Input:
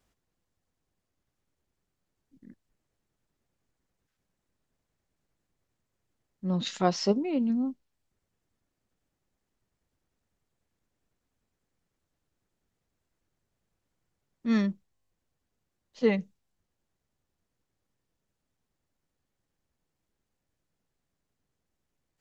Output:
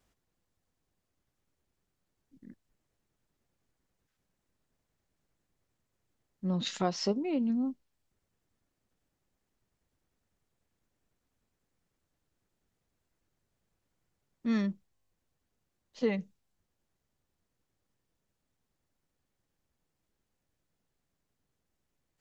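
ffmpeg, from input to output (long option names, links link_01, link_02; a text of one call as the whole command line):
ffmpeg -i in.wav -af "acompressor=threshold=-29dB:ratio=2" out.wav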